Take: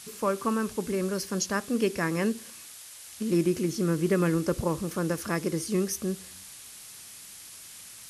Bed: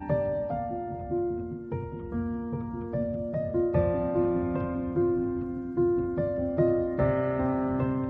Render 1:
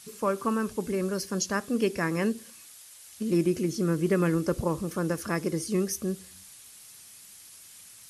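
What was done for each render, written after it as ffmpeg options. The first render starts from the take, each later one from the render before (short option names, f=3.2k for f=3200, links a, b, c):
-af "afftdn=nr=6:nf=-47"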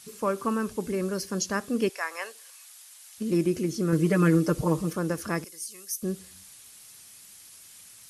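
-filter_complex "[0:a]asettb=1/sr,asplit=3[a][b][c];[a]atrim=end=1.894[d];[b]atrim=start=1.89:end=3.18,asetpts=PTS-STARTPTS,afade=t=in:d=0.004:c=qsin,afade=t=out:st=1.286:d=0.004:c=qsin,highpass=f=650:w=0.5412,highpass=f=650:w=1.3066[e];[c]atrim=start=3.176[f];[d][e]acrossfade=d=0.004:c1=hsin:c2=qsin[g];[g][f]acrossfade=d=0.004:c1=qsin:c2=hsin,asettb=1/sr,asplit=3[h][i][j];[h]atrim=end=3.924[k];[i]atrim=start=3.92:end=4.93,asetpts=PTS-STARTPTS,afade=t=in:d=0.004:c=qsin,afade=t=out:st=1.006:d=0.004:c=qsin,aecho=1:1:6.5:0.95,atrim=end_sample=44541[l];[j]atrim=start=4.926[m];[k][l]acrossfade=d=0.004:c1=hsin:c2=qsin[n];[n][m]acrossfade=d=0.004:c1=qsin:c2=hsin,asettb=1/sr,asplit=3[o][p][q];[o]atrim=end=5.444[r];[p]atrim=start=5.44:end=6.03,asetpts=PTS-STARTPTS,afade=t=in:d=0.004:c=qsin,afade=t=out:st=0.586:d=0.004:c=qsin,aderivative[s];[q]atrim=start=6.026[t];[r][s]acrossfade=d=0.004:c1=hsin:c2=qsin[u];[u][t]acrossfade=d=0.004:c1=qsin:c2=hsin"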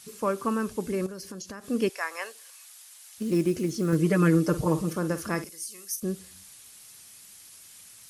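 -filter_complex "[0:a]asettb=1/sr,asplit=3[a][b][c];[a]atrim=end=1.064[d];[b]atrim=start=1.06:end=1.66,asetpts=PTS-STARTPTS,afade=t=in:d=0.004:c=qsin,afade=t=out:st=0.596:d=0.004:c=qsin,acompressor=threshold=-35dB:ratio=16:attack=3.2:release=140:knee=1:detection=peak[e];[c]atrim=start=1.656[f];[d][e]acrossfade=d=0.004:c1=hsin:c2=qsin[g];[g][f]acrossfade=d=0.004:c1=qsin:c2=hsin,asettb=1/sr,asplit=3[h][i][j];[h]atrim=end=2.254[k];[i]atrim=start=2.25:end=3.95,asetpts=PTS-STARTPTS,afade=t=in:d=0.004:c=qsin,afade=t=out:st=1.696:d=0.004:c=qsin,acrusher=bits=8:mode=log:mix=0:aa=0.000001[l];[j]atrim=start=3.946[m];[k][l]acrossfade=d=0.004:c1=hsin:c2=qsin[n];[n][m]acrossfade=d=0.004:c1=qsin:c2=hsin,asettb=1/sr,asplit=3[o][p][q];[o]atrim=end=4.474[r];[p]atrim=start=4.47:end=6,asetpts=PTS-STARTPTS,afade=t=in:d=0.004:c=qsin,afade=t=out:st=1.526:d=0.004:c=qsin,asplit=2[s][t];[t]adelay=50,volume=-12dB[u];[s][u]amix=inputs=2:normalize=0,atrim=end_sample=67473[v];[q]atrim=start=5.996[w];[r][v]acrossfade=d=0.004:c1=hsin:c2=qsin[x];[x][w]acrossfade=d=0.004:c1=qsin:c2=hsin"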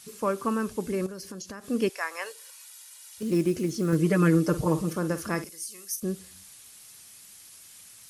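-filter_complex "[0:a]asettb=1/sr,asplit=3[a][b][c];[a]atrim=end=2.264[d];[b]atrim=start=2.26:end=3.23,asetpts=PTS-STARTPTS,afade=t=in:d=0.004:c=qsin,afade=t=out:st=0.966:d=0.004:c=qsin,aecho=1:1:2.1:0.68,atrim=end_sample=42777[e];[c]atrim=start=3.226[f];[d][e]acrossfade=d=0.004:c1=hsin:c2=qsin[g];[g][f]acrossfade=d=0.004:c1=qsin:c2=hsin"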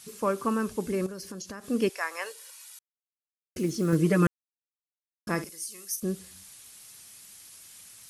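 -filter_complex "[0:a]asplit=5[a][b][c][d][e];[a]atrim=end=2.79,asetpts=PTS-STARTPTS,afade=t=out:st=2.786:d=0.004:c=hsin[f];[b]atrim=start=2.79:end=3.56,asetpts=PTS-STARTPTS,volume=0[g];[c]atrim=start=3.56:end=4.27,asetpts=PTS-STARTPTS,afade=t=in:d=0.004:c=hsin,afade=t=out:st=0.706:d=0.004:c=hsin[h];[d]atrim=start=4.27:end=5.27,asetpts=PTS-STARTPTS,volume=0[i];[e]atrim=start=5.27,asetpts=PTS-STARTPTS,afade=t=in:d=0.004:c=hsin[j];[f][g][h][i][j]concat=n=5:v=0:a=1"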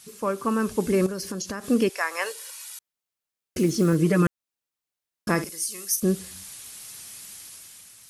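-af "dynaudnorm=f=120:g=11:m=8dB,alimiter=limit=-11.5dB:level=0:latency=1:release=261"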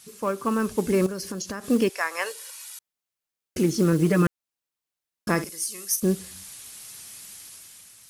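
-af "aeval=exprs='0.282*(cos(1*acos(clip(val(0)/0.282,-1,1)))-cos(1*PI/2))+0.00398*(cos(7*acos(clip(val(0)/0.282,-1,1)))-cos(7*PI/2))':c=same,acrusher=bits=7:mode=log:mix=0:aa=0.000001"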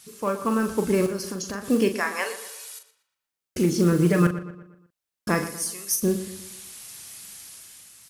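-filter_complex "[0:a]asplit=2[a][b];[b]adelay=40,volume=-8.5dB[c];[a][c]amix=inputs=2:normalize=0,asplit=2[d][e];[e]adelay=119,lowpass=f=3.7k:p=1,volume=-12.5dB,asplit=2[f][g];[g]adelay=119,lowpass=f=3.7k:p=1,volume=0.46,asplit=2[h][i];[i]adelay=119,lowpass=f=3.7k:p=1,volume=0.46,asplit=2[j][k];[k]adelay=119,lowpass=f=3.7k:p=1,volume=0.46,asplit=2[l][m];[m]adelay=119,lowpass=f=3.7k:p=1,volume=0.46[n];[d][f][h][j][l][n]amix=inputs=6:normalize=0"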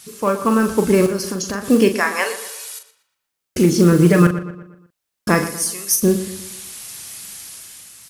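-af "volume=7.5dB,alimiter=limit=-2dB:level=0:latency=1"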